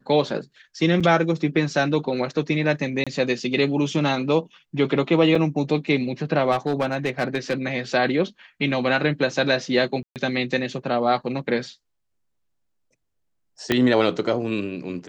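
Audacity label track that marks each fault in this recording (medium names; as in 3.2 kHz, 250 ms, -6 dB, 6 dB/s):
1.000000	1.010000	dropout 6.3 ms
3.040000	3.070000	dropout 26 ms
5.350000	5.350000	dropout 3.8 ms
6.510000	7.530000	clipped -17 dBFS
10.030000	10.160000	dropout 128 ms
13.720000	13.720000	pop -6 dBFS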